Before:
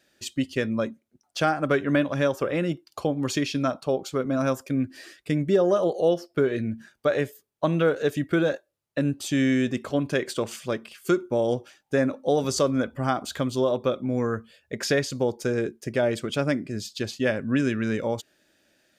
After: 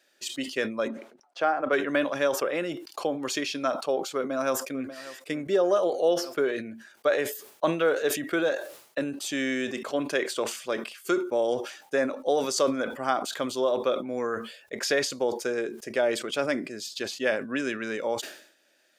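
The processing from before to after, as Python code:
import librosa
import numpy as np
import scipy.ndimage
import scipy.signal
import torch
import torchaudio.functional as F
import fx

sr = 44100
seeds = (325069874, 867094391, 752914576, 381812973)

y = fx.bandpass_q(x, sr, hz=660.0, q=0.52, at=(0.88, 1.73))
y = fx.echo_throw(y, sr, start_s=4.15, length_s=0.79, ms=590, feedback_pct=30, wet_db=-16.5)
y = scipy.signal.sosfilt(scipy.signal.butter(2, 410.0, 'highpass', fs=sr, output='sos'), y)
y = fx.sustainer(y, sr, db_per_s=93.0)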